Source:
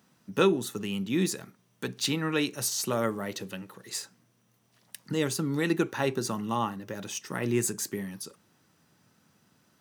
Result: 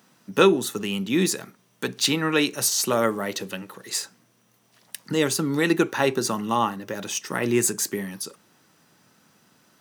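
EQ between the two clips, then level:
high-pass filter 230 Hz 6 dB per octave
+7.5 dB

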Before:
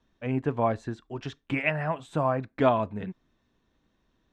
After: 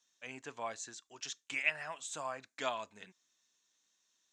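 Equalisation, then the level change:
resonant band-pass 6,800 Hz, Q 3.9
+17.0 dB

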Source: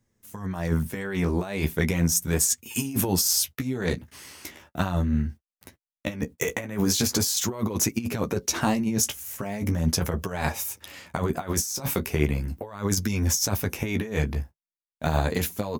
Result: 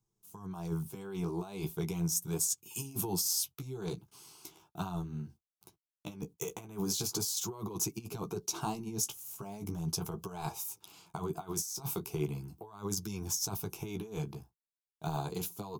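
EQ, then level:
phaser with its sweep stopped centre 370 Hz, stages 8
−8.0 dB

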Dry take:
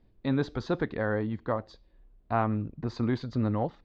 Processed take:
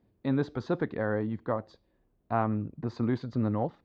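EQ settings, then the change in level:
high-pass filter 89 Hz 12 dB per octave
parametric band 4,600 Hz −6 dB 2.6 octaves
0.0 dB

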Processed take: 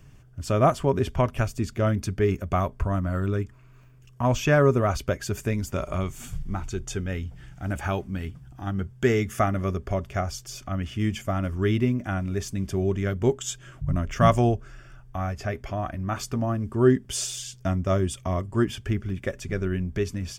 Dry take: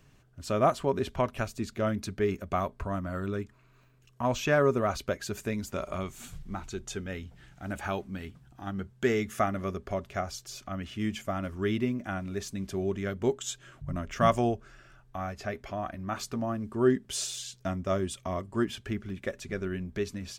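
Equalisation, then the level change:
bass and treble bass +8 dB, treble +1 dB
parametric band 210 Hz −5.5 dB 0.42 octaves
notch filter 4,000 Hz, Q 6.3
+3.5 dB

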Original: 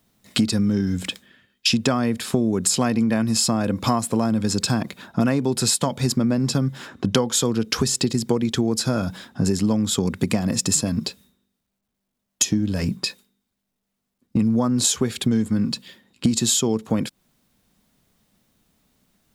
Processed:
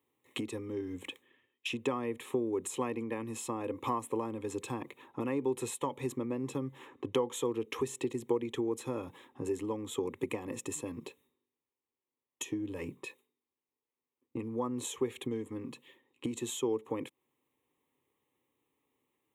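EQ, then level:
high-pass filter 190 Hz 12 dB per octave
high-shelf EQ 2,500 Hz −10 dB
phaser with its sweep stopped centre 990 Hz, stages 8
−6.0 dB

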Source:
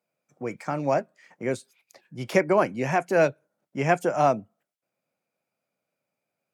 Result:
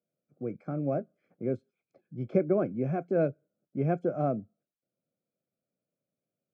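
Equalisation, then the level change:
moving average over 47 samples
high-frequency loss of the air 92 metres
0.0 dB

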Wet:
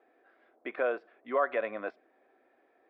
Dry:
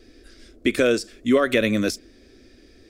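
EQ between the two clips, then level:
four-pole ladder band-pass 900 Hz, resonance 70%
high-frequency loss of the air 490 metres
+9.0 dB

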